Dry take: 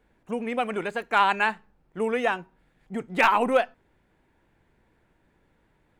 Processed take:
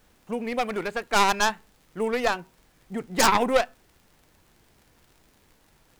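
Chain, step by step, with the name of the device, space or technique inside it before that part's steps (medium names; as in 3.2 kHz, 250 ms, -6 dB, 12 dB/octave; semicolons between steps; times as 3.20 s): record under a worn stylus (tracing distortion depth 0.37 ms; crackle; pink noise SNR 35 dB)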